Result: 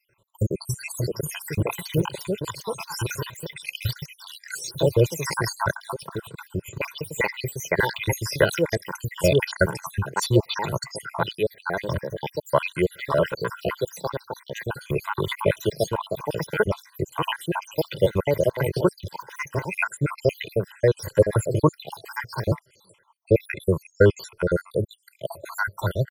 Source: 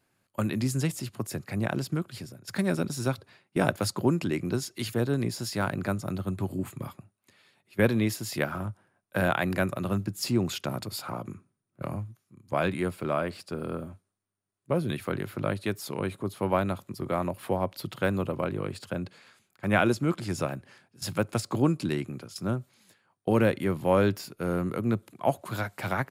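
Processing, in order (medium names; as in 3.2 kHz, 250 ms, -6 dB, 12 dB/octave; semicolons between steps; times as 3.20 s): random holes in the spectrogram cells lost 79%; ever faster or slower copies 649 ms, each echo +3 st, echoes 2; comb 2 ms, depth 93%; trim +7 dB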